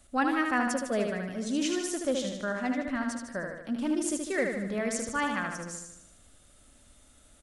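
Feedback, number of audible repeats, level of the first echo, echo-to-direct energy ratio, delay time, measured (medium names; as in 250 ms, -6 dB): 56%, 7, -4.5 dB, -3.0 dB, 76 ms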